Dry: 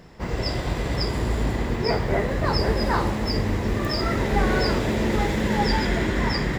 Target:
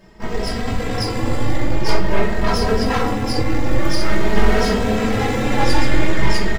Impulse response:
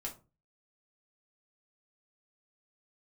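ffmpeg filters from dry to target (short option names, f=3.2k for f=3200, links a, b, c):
-filter_complex "[0:a]aeval=exprs='0.376*(cos(1*acos(clip(val(0)/0.376,-1,1)))-cos(1*PI/2))+0.106*(cos(6*acos(clip(val(0)/0.376,-1,1)))-cos(6*PI/2))':c=same[a];[1:a]atrim=start_sample=2205,atrim=end_sample=3087[b];[a][b]afir=irnorm=-1:irlink=0,asplit=2[c][d];[d]adelay=2.8,afreqshift=0.47[e];[c][e]amix=inputs=2:normalize=1,volume=5dB"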